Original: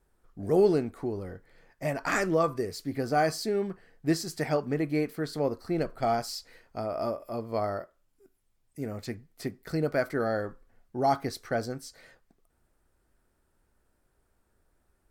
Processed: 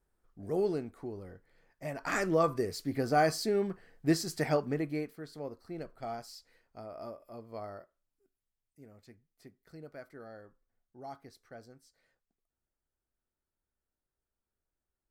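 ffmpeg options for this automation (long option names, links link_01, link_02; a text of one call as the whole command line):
ffmpeg -i in.wav -af "volume=-1dB,afade=type=in:start_time=1.89:duration=0.6:silence=0.421697,afade=type=out:start_time=4.51:duration=0.66:silence=0.266073,afade=type=out:start_time=7.8:duration=1.09:silence=0.421697" out.wav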